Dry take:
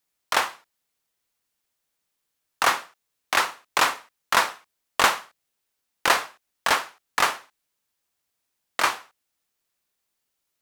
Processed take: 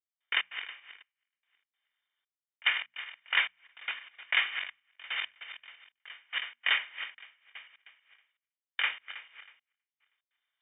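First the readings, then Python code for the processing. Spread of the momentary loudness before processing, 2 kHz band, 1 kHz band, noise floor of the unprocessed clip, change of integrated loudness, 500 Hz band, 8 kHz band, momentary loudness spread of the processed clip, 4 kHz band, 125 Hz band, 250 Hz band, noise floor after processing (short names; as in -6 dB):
11 LU, -5.0 dB, -20.0 dB, -79 dBFS, -8.0 dB, -24.0 dB, under -40 dB, 21 LU, -4.5 dB, under -25 dB, under -25 dB, under -85 dBFS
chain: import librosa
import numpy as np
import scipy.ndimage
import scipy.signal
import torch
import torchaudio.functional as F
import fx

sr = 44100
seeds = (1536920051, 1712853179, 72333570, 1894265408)

y = fx.reverse_delay_fb(x, sr, ms=160, feedback_pct=50, wet_db=-10.0)
y = (np.kron(y[::6], np.eye(6)[0]) * 6)[:len(y)]
y = fx.step_gate(y, sr, bpm=147, pattern='..xx.xxxxx..', floor_db=-24.0, edge_ms=4.5)
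y = fx.high_shelf(y, sr, hz=2700.0, db=-10.5)
y = fx.fixed_phaser(y, sr, hz=960.0, stages=6)
y = fx.rider(y, sr, range_db=4, speed_s=2.0)
y = fx.freq_invert(y, sr, carrier_hz=3600)
y = fx.hum_notches(y, sr, base_hz=60, count=4)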